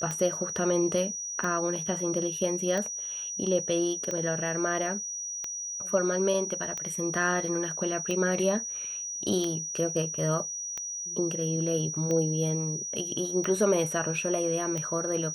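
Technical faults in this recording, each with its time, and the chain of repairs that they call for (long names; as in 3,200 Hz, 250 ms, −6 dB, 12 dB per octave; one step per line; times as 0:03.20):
scratch tick 45 rpm −19 dBFS
whistle 5,800 Hz −33 dBFS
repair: click removal
notch filter 5,800 Hz, Q 30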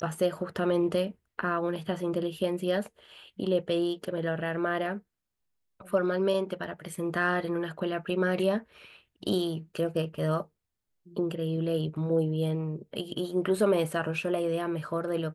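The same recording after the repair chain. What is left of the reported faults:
none of them is left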